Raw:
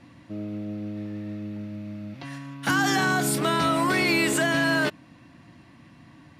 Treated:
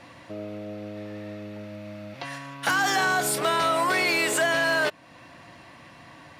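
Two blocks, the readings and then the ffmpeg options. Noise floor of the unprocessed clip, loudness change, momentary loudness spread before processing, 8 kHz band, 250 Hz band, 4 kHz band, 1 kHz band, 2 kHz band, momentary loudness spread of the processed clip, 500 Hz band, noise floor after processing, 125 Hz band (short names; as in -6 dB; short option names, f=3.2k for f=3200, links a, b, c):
-52 dBFS, +1.5 dB, 16 LU, +1.0 dB, -8.0 dB, +0.5 dB, +1.5 dB, +1.0 dB, 17 LU, +1.0 dB, -49 dBFS, -8.0 dB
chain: -af "asoftclip=type=hard:threshold=-16.5dB,acompressor=threshold=-41dB:ratio=1.5,lowshelf=f=370:t=q:w=1.5:g=-9,volume=8dB"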